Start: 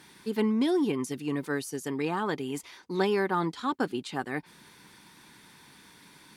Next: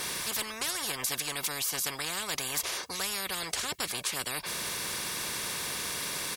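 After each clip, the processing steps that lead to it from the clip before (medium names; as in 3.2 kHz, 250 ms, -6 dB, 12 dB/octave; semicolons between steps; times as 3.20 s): tone controls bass -7 dB, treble +4 dB; comb 1.8 ms, depth 62%; spectrum-flattening compressor 10:1; trim -1 dB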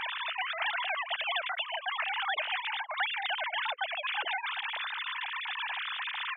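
formants replaced by sine waves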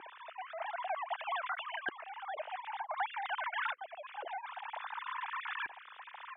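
LFO band-pass saw up 0.53 Hz 360–1500 Hz; trim +2.5 dB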